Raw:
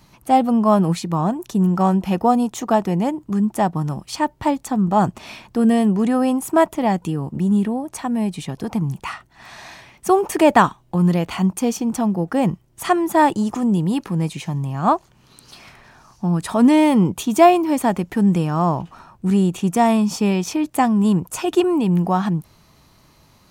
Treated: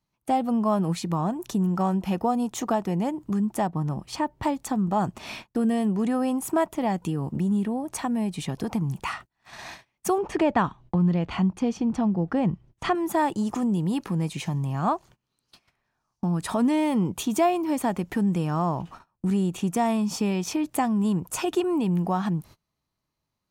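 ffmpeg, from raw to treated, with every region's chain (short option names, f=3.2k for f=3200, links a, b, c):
-filter_complex "[0:a]asettb=1/sr,asplit=3[a][b][c];[a]atrim=end=3.674[d];[b]atrim=start=3.67:end=4.43,asetpts=PTS-STARTPTS,afade=t=in:d=0.004:c=qsin,afade=t=out:st=0.756:d=0.004:c=qsin,highshelf=f=2.6k:g=-8,bandreject=f=1.4k:w=18[e];[c]atrim=start=4.426[f];[d][e]acrossfade=d=0.004:c1=hsin:c2=qsin[g];[g][f]acrossfade=d=0.004:c1=qsin:c2=hsin,asettb=1/sr,asplit=3[h][i][j];[h]atrim=end=10.184[k];[i]atrim=start=10.18:end=12.95,asetpts=PTS-STARTPTS,afade=t=in:d=0.004:c=qsin,afade=t=out:st=2.766:d=0.004:c=qsin,lowpass=4.2k,lowshelf=f=190:g=8.5[l];[j]atrim=start=12.946[m];[k][l]acrossfade=d=0.004:c1=hsin:c2=qsin[n];[n][m]acrossfade=d=0.004:c1=qsin:c2=hsin,agate=range=-29dB:threshold=-39dB:ratio=16:detection=peak,acompressor=threshold=-27dB:ratio=2"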